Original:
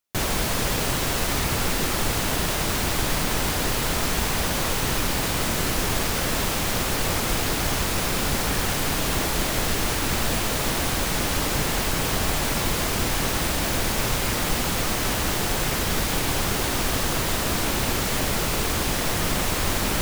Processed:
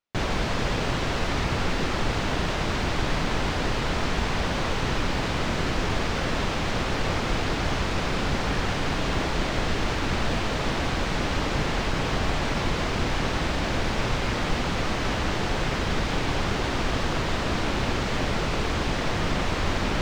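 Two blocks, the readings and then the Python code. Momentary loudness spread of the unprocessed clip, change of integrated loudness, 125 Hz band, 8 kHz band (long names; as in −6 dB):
0 LU, −3.0 dB, 0.0 dB, −13.0 dB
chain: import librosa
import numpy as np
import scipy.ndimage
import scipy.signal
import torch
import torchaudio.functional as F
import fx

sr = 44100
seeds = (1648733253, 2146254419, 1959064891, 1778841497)

y = fx.air_absorb(x, sr, metres=150.0)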